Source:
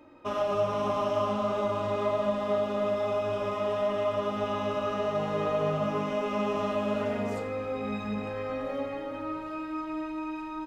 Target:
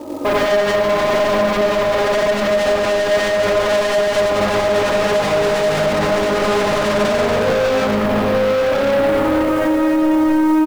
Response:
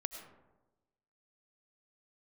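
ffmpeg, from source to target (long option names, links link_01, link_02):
-filter_complex "[0:a]lowpass=frequency=1200:width=0.5412,lowpass=frequency=1200:width=1.3066,equalizer=frequency=460:width_type=o:width=2.8:gain=9.5,dynaudnorm=framelen=400:gausssize=13:maxgain=11.5dB,aresample=8000,asoftclip=type=tanh:threshold=-23dB,aresample=44100,acrusher=bits=4:mode=log:mix=0:aa=0.000001,asoftclip=type=hard:threshold=-30.5dB,asplit=2[link_01][link_02];[link_02]adelay=932.9,volume=-8dB,highshelf=frequency=4000:gain=-21[link_03];[link_01][link_03]amix=inputs=2:normalize=0,asplit=2[link_04][link_05];[1:a]atrim=start_sample=2205,afade=type=out:start_time=0.35:duration=0.01,atrim=end_sample=15876,adelay=90[link_06];[link_05][link_06]afir=irnorm=-1:irlink=0,volume=4.5dB[link_07];[link_04][link_07]amix=inputs=2:normalize=0,alimiter=level_in=24dB:limit=-1dB:release=50:level=0:latency=1,volume=-8.5dB"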